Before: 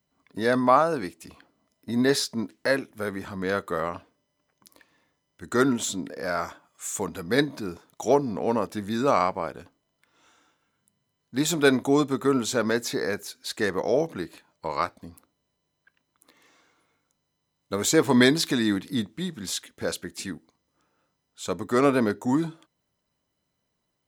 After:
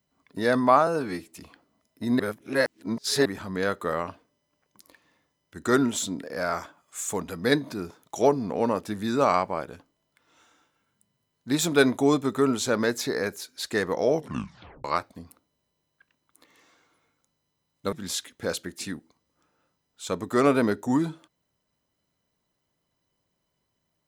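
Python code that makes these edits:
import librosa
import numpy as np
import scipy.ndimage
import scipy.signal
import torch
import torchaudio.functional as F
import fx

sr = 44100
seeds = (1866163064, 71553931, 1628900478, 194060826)

y = fx.edit(x, sr, fx.stretch_span(start_s=0.87, length_s=0.27, factor=1.5),
    fx.reverse_span(start_s=2.06, length_s=1.06),
    fx.tape_stop(start_s=14.03, length_s=0.68),
    fx.cut(start_s=17.79, length_s=1.52), tone=tone)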